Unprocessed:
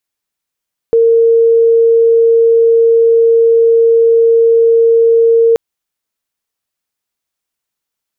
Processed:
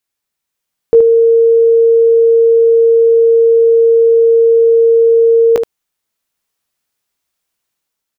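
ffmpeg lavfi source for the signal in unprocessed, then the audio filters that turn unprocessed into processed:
-f lavfi -i "sine=f=459:d=4.63:r=44100,volume=13.06dB"
-af "dynaudnorm=f=150:g=7:m=4.5dB,aecho=1:1:17|75:0.355|0.398"

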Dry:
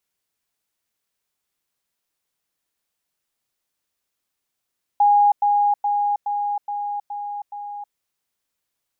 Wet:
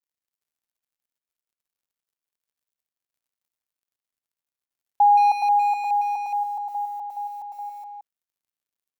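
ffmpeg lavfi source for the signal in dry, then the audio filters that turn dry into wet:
-f lavfi -i "aevalsrc='pow(10,(-11.5-3*floor(t/0.42))/20)*sin(2*PI*821*t)*clip(min(mod(t,0.42),0.32-mod(t,0.42))/0.005,0,1)':d=2.94:s=44100"
-filter_complex "[0:a]aemphasis=mode=production:type=50kf,acrusher=bits=8:mix=0:aa=0.5,asplit=2[a][b];[b]adelay=170,highpass=300,lowpass=3.4k,asoftclip=type=hard:threshold=-20.5dB,volume=-6dB[c];[a][c]amix=inputs=2:normalize=0"

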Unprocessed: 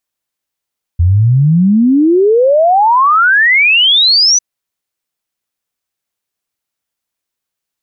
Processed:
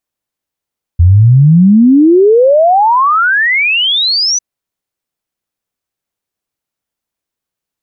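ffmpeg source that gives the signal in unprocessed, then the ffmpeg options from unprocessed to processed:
-f lavfi -i "aevalsrc='0.531*clip(min(t,3.4-t)/0.01,0,1)*sin(2*PI*82*3.4/log(6100/82)*(exp(log(6100/82)*t/3.4)-1))':d=3.4:s=44100"
-af "tiltshelf=f=970:g=3.5"

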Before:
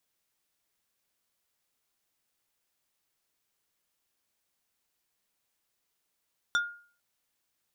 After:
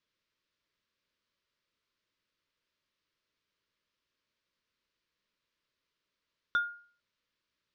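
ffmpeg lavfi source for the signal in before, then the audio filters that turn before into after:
-f lavfi -i "aevalsrc='0.0891*pow(10,-3*t/0.45)*sin(2*PI*1420*t)+0.0447*pow(10,-3*t/0.15)*sin(2*PI*3550*t)+0.0224*pow(10,-3*t/0.085)*sin(2*PI*5680*t)+0.0112*pow(10,-3*t/0.065)*sin(2*PI*7100*t)+0.00562*pow(10,-3*t/0.048)*sin(2*PI*9230*t)':d=0.45:s=44100"
-filter_complex "[0:a]lowpass=f=4.9k:w=0.5412,lowpass=f=4.9k:w=1.3066,acrossover=split=3100[a][b];[b]acompressor=threshold=-54dB:ratio=4:attack=1:release=60[c];[a][c]amix=inputs=2:normalize=0,asuperstop=centerf=770:order=4:qfactor=2.6"

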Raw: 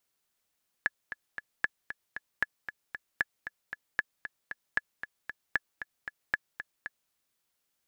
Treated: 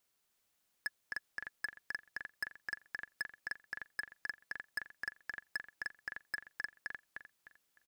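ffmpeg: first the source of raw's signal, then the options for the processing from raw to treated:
-f lavfi -i "aevalsrc='pow(10,(-12.5-11*gte(mod(t,3*60/230),60/230))/20)*sin(2*PI*1710*mod(t,60/230))*exp(-6.91*mod(t,60/230)/0.03)':d=6.26:s=44100"
-filter_complex "[0:a]asplit=2[a][b];[b]aecho=0:1:304|608|912|1216:0.447|0.13|0.0376|0.0109[c];[a][c]amix=inputs=2:normalize=0,asoftclip=type=hard:threshold=-30.5dB"

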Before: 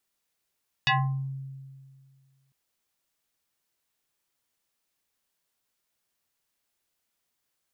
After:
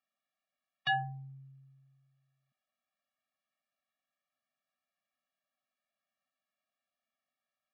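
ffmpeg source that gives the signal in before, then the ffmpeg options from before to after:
-f lavfi -i "aevalsrc='0.119*pow(10,-3*t/1.98)*sin(2*PI*135*t+4.6*pow(10,-3*t/0.45)*sin(2*PI*6.77*135*t))':d=1.65:s=44100"
-af "highpass=300,lowpass=2.4k,afftfilt=real='re*eq(mod(floor(b*sr/1024/270),2),0)':imag='im*eq(mod(floor(b*sr/1024/270),2),0)':win_size=1024:overlap=0.75"

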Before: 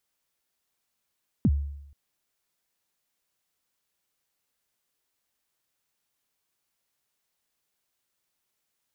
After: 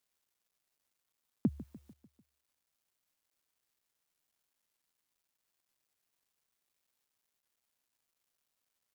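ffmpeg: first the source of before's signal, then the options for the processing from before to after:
-f lavfi -i "aevalsrc='0.168*pow(10,-3*t/0.82)*sin(2*PI*(280*0.048/log(71/280)*(exp(log(71/280)*min(t,0.048)/0.048)-1)+71*max(t-0.048,0)))':d=0.48:s=44100"
-af "highpass=260,acrusher=bits=11:mix=0:aa=0.000001,aecho=1:1:148|296|444|592|740:0.15|0.0793|0.042|0.0223|0.0118"

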